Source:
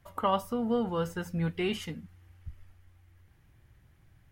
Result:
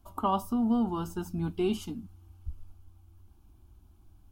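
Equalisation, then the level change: bass shelf 430 Hz +8.5 dB; treble shelf 10 kHz +3.5 dB; static phaser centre 510 Hz, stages 6; 0.0 dB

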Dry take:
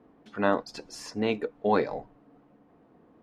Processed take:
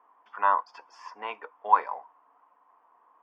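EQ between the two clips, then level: resonant high-pass 1 kHz, resonance Q 7.8; Butterworth band-stop 4 kHz, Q 4.6; distance through air 210 m; -3.0 dB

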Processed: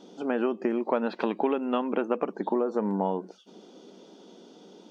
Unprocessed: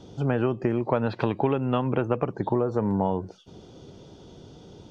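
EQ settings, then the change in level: brick-wall FIR high-pass 180 Hz; -1.5 dB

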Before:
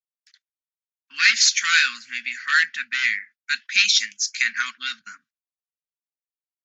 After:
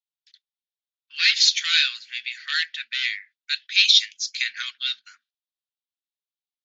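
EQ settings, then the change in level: band-pass filter 3.6 kHz, Q 3.2; +6.0 dB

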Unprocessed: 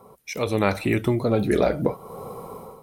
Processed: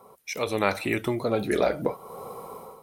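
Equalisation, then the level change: bass shelf 290 Hz -11 dB; 0.0 dB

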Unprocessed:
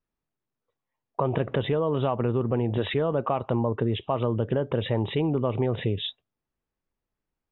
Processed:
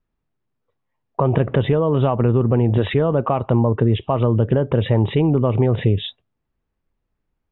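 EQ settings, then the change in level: low-pass 3.4 kHz 12 dB/octave; bass shelf 190 Hz +7.5 dB; +5.5 dB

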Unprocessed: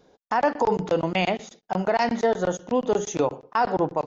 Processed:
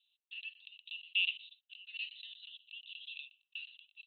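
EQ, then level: rippled Chebyshev high-pass 2.6 kHz, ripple 6 dB; rippled Chebyshev low-pass 4.1 kHz, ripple 6 dB; distance through air 480 m; +14.5 dB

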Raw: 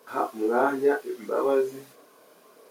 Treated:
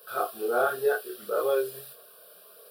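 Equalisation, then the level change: treble shelf 3.6 kHz +10.5 dB; treble shelf 8.1 kHz +5.5 dB; static phaser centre 1.4 kHz, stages 8; 0.0 dB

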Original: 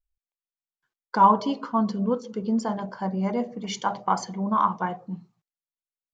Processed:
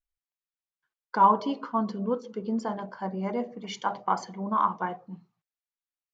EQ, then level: low-pass 1.4 kHz 6 dB/octave; tilt shelf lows -7 dB, about 940 Hz; dynamic bell 350 Hz, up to +6 dB, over -42 dBFS, Q 1; -2.0 dB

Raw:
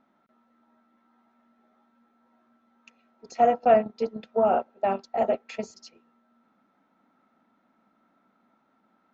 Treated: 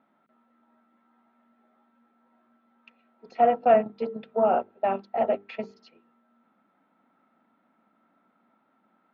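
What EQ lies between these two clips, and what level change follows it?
high-pass 100 Hz 12 dB/octave; low-pass 3.6 kHz 24 dB/octave; hum notches 50/100/150/200/250/300/350/400/450 Hz; 0.0 dB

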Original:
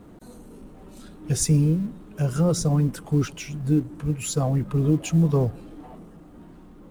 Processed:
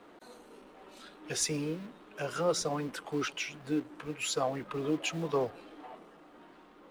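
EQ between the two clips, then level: three-band isolator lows -21 dB, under 310 Hz, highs -15 dB, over 4.6 kHz; tilt shelf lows -4.5 dB; 0.0 dB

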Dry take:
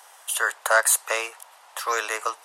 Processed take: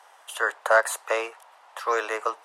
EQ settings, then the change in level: low-pass 1.9 kHz 6 dB/octave; dynamic bell 390 Hz, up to +5 dB, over -38 dBFS, Q 0.74; 0.0 dB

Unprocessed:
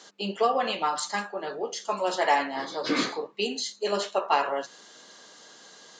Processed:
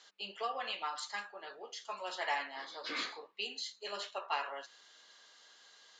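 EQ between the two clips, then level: band-pass filter 7.1 kHz, Q 3; distance through air 420 m; +17.0 dB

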